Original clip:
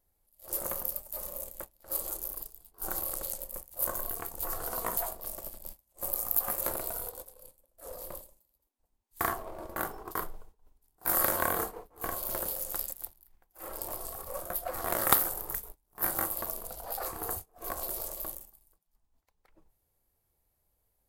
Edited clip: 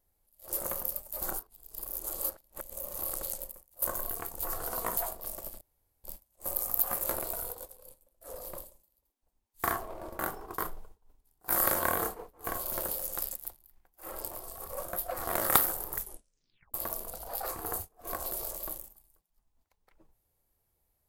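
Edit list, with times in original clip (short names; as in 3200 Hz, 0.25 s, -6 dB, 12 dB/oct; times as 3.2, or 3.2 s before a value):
1.22–2.99 reverse
3.52–3.82 gain -12 dB
5.61 insert room tone 0.43 s
13.85–14.17 gain -4 dB
15.57 tape stop 0.74 s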